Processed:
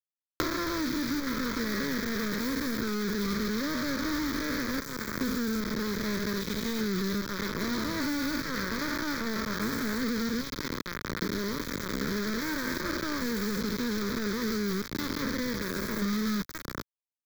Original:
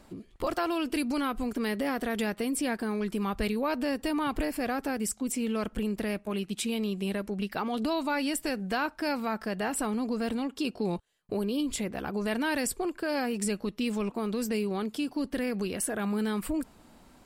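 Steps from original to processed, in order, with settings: spectrogram pixelated in time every 400 ms; in parallel at -4 dB: hard clipper -35.5 dBFS, distortion -9 dB; on the sum: bit crusher 5-bit; static phaser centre 2.8 kHz, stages 6; three bands compressed up and down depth 100%

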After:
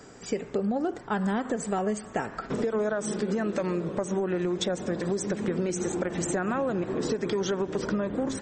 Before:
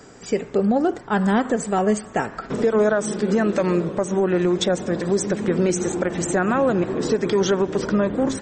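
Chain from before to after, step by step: compression, threshold -21 dBFS, peak gain reduction 7 dB; trim -3.5 dB

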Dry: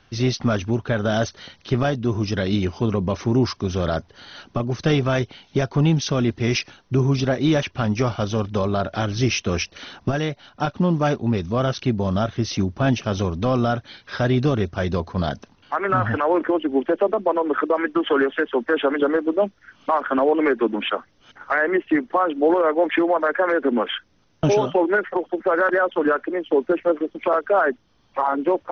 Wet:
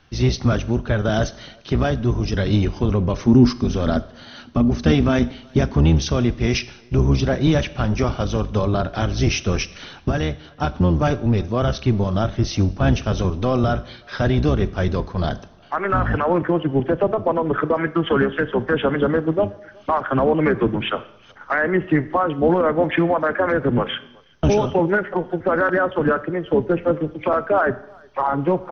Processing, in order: octave divider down 1 oct, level 0 dB; 3.27–5.77 s: peaking EQ 240 Hz +14 dB 0.24 oct; speakerphone echo 370 ms, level -28 dB; Schroeder reverb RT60 0.78 s, combs from 29 ms, DRR 16 dB

